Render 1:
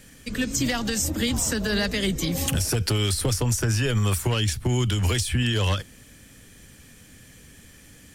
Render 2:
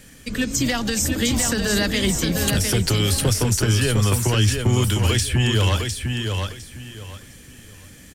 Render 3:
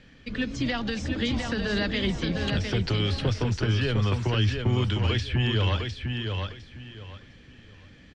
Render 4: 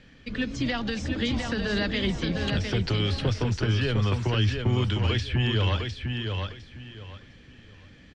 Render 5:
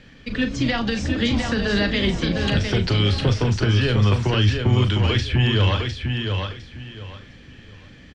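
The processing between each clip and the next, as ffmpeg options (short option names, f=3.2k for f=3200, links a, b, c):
-af "aecho=1:1:706|1412|2118:0.562|0.135|0.0324,volume=3dB"
-af "lowpass=f=4.2k:w=0.5412,lowpass=f=4.2k:w=1.3066,volume=-5.5dB"
-af anull
-filter_complex "[0:a]asplit=2[a][b];[b]adelay=39,volume=-9.5dB[c];[a][c]amix=inputs=2:normalize=0,volume=5.5dB"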